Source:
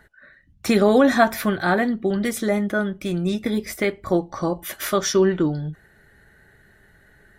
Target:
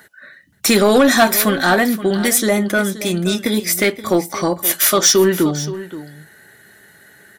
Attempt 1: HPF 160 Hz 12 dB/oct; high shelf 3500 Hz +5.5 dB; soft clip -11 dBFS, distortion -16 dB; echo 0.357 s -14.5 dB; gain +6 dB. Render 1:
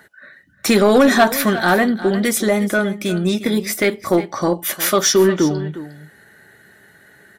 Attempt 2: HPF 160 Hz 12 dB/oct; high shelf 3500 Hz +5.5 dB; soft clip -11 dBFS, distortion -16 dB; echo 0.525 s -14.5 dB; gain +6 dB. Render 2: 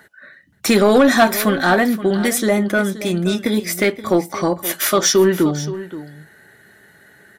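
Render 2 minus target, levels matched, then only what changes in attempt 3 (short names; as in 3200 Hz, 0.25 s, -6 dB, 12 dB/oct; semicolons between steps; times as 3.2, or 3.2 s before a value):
8000 Hz band -4.0 dB
change: high shelf 3500 Hz +13.5 dB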